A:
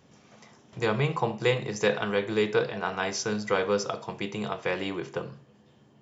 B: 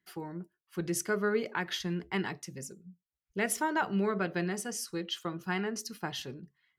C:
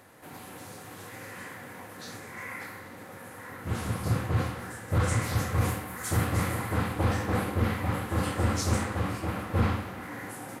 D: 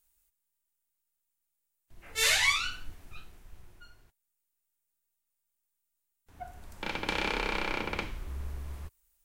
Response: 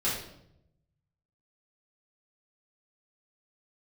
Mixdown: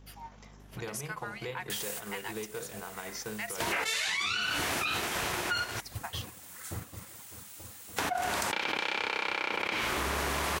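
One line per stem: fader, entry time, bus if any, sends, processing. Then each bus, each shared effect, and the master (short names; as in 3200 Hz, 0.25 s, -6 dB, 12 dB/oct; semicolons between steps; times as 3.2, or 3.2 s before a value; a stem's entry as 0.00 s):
-2.0 dB, 0.00 s, bus A, no send, hum 50 Hz, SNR 22 dB; compressor 2.5:1, threshold -39 dBFS, peak gain reduction 13.5 dB
+1.0 dB, 0.00 s, bus A, no send, rippled Chebyshev high-pass 670 Hz, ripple 6 dB; high shelf 8900 Hz +8 dB
6.73 s -8 dB -> 7.3 s -20.5 dB, 0.60 s, bus A, no send, reverb removal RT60 1.8 s; compressor 1.5:1, threshold -35 dBFS, peak gain reduction 5.5 dB
-1.0 dB, 1.70 s, no bus, no send, weighting filter A; fast leveller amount 100%
bus A: 0.0 dB, wow and flutter 28 cents; limiter -27.5 dBFS, peak gain reduction 10 dB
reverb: off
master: transient shaper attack +2 dB, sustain -6 dB; compressor 4:1, threshold -30 dBFS, peak gain reduction 11 dB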